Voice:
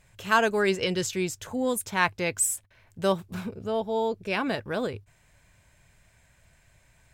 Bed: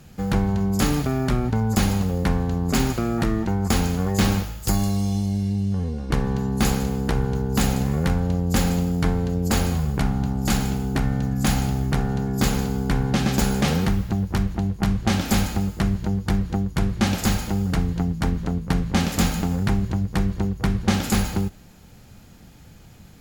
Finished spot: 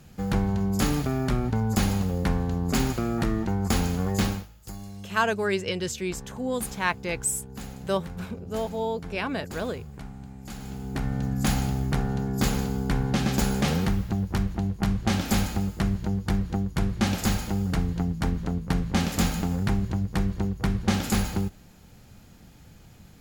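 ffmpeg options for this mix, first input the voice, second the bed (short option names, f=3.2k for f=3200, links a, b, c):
-filter_complex "[0:a]adelay=4850,volume=-2dB[a];[1:a]volume=11dB,afade=t=out:st=4.15:d=0.33:silence=0.188365,afade=t=in:st=10.55:d=0.74:silence=0.188365[b];[a][b]amix=inputs=2:normalize=0"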